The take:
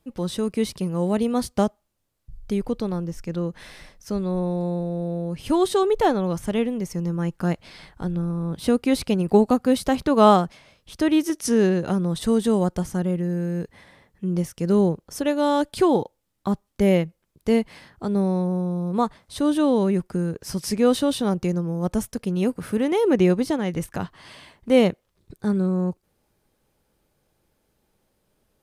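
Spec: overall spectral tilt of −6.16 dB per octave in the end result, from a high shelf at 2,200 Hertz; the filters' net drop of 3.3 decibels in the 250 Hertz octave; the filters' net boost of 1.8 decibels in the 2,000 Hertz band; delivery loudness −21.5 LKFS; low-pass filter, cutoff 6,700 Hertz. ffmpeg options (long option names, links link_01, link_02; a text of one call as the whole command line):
ffmpeg -i in.wav -af "lowpass=6700,equalizer=frequency=250:width_type=o:gain=-4.5,equalizer=frequency=2000:width_type=o:gain=5.5,highshelf=frequency=2200:gain=-6,volume=3.5dB" out.wav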